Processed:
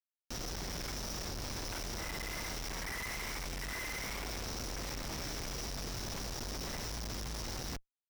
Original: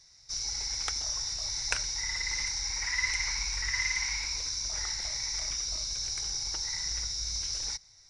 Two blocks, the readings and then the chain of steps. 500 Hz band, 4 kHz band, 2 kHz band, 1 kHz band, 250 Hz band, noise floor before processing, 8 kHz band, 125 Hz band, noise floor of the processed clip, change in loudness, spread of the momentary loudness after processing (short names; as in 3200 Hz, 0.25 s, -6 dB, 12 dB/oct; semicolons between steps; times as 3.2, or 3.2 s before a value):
+10.0 dB, -11.5 dB, -8.5 dB, +1.5 dB, n/a, -58 dBFS, -12.0 dB, +3.0 dB, under -85 dBFS, -9.0 dB, 2 LU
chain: notch 4400 Hz, Q 16; Schmitt trigger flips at -32 dBFS; gain -6 dB